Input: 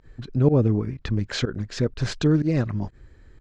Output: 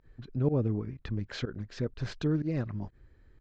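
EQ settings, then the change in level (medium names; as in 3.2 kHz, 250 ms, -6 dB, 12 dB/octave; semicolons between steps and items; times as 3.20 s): distance through air 92 m; -9.0 dB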